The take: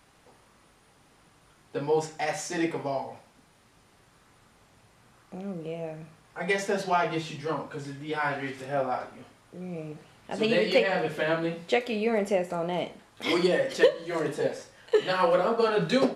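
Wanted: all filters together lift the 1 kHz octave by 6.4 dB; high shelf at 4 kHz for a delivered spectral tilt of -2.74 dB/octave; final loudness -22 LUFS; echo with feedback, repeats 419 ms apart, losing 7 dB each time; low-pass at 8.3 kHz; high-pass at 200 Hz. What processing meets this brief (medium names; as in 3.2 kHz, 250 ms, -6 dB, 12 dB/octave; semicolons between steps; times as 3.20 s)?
high-pass 200 Hz; low-pass 8.3 kHz; peaking EQ 1 kHz +9 dB; treble shelf 4 kHz -6 dB; feedback delay 419 ms, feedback 45%, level -7 dB; trim +3 dB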